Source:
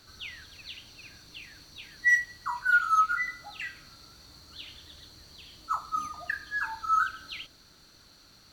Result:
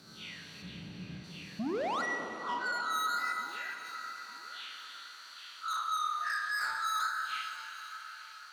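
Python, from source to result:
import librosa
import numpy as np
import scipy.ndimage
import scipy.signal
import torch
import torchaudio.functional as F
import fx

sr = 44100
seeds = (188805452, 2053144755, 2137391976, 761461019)

y = fx.spec_blur(x, sr, span_ms=81.0)
y = fx.riaa(y, sr, side='playback', at=(0.62, 1.24))
y = fx.env_lowpass_down(y, sr, base_hz=940.0, full_db=-27.0)
y = fx.peak_eq(y, sr, hz=450.0, db=3.5, octaves=2.0)
y = fx.level_steps(y, sr, step_db=12, at=(3.32, 3.85))
y = fx.filter_sweep_highpass(y, sr, from_hz=170.0, to_hz=1400.0, start_s=1.78, end_s=3.08, q=4.9)
y = fx.spec_paint(y, sr, seeds[0], shape='rise', start_s=1.59, length_s=0.43, low_hz=200.0, high_hz=1500.0, level_db=-27.0)
y = 10.0 ** (-32.5 / 20.0) * np.tanh(y / 10.0 ** (-32.5 / 20.0))
y = fx.echo_feedback(y, sr, ms=899, feedback_pct=36, wet_db=-17)
y = fx.rev_plate(y, sr, seeds[1], rt60_s=4.3, hf_ratio=0.9, predelay_ms=0, drr_db=3.5)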